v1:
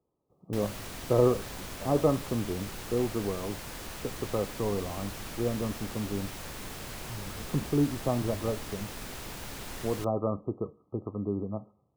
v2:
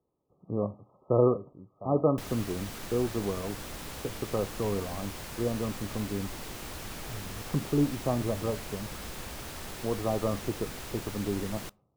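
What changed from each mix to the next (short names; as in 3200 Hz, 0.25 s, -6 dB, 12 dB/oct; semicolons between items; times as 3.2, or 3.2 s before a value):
background: entry +1.65 s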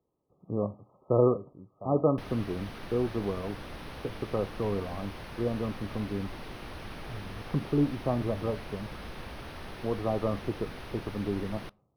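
master: add running mean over 6 samples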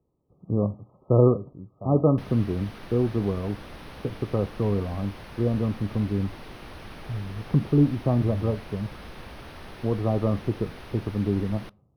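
speech: add low shelf 270 Hz +12 dB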